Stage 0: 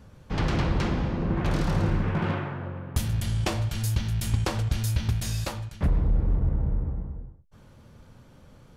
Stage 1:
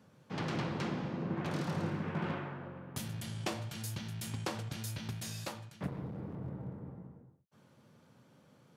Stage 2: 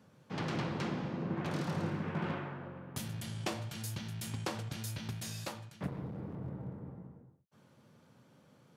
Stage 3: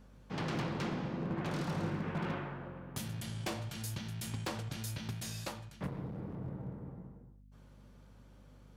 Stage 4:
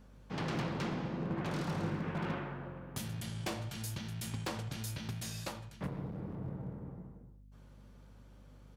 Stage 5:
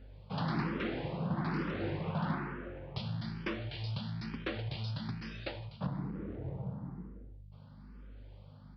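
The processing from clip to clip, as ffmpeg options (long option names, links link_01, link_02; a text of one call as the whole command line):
ffmpeg -i in.wav -af "highpass=frequency=130:width=0.5412,highpass=frequency=130:width=1.3066,volume=-8dB" out.wav
ffmpeg -i in.wav -af anull out.wav
ffmpeg -i in.wav -af "aeval=exprs='0.0376*(abs(mod(val(0)/0.0376+3,4)-2)-1)':channel_layout=same,aeval=exprs='val(0)+0.00141*(sin(2*PI*50*n/s)+sin(2*PI*2*50*n/s)/2+sin(2*PI*3*50*n/s)/3+sin(2*PI*4*50*n/s)/4+sin(2*PI*5*50*n/s)/5)':channel_layout=same" out.wav
ffmpeg -i in.wav -filter_complex "[0:a]asplit=2[link_01][link_02];[link_02]adelay=79,lowpass=frequency=2000:poles=1,volume=-16dB,asplit=2[link_03][link_04];[link_04]adelay=79,lowpass=frequency=2000:poles=1,volume=0.46,asplit=2[link_05][link_06];[link_06]adelay=79,lowpass=frequency=2000:poles=1,volume=0.46,asplit=2[link_07][link_08];[link_08]adelay=79,lowpass=frequency=2000:poles=1,volume=0.46[link_09];[link_01][link_03][link_05][link_07][link_09]amix=inputs=5:normalize=0" out.wav
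ffmpeg -i in.wav -filter_complex "[0:a]aeval=exprs='val(0)+0.000891*(sin(2*PI*50*n/s)+sin(2*PI*2*50*n/s)/2+sin(2*PI*3*50*n/s)/3+sin(2*PI*4*50*n/s)/4+sin(2*PI*5*50*n/s)/5)':channel_layout=same,aresample=11025,aresample=44100,asplit=2[link_01][link_02];[link_02]afreqshift=1.1[link_03];[link_01][link_03]amix=inputs=2:normalize=1,volume=4.5dB" out.wav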